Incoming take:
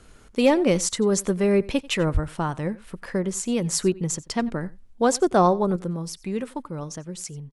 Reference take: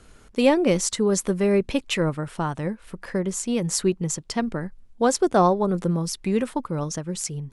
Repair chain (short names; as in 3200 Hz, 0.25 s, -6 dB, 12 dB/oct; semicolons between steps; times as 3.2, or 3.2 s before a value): clip repair -8 dBFS; de-plosive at 2.13; inverse comb 90 ms -21.5 dB; gain 0 dB, from 5.76 s +5.5 dB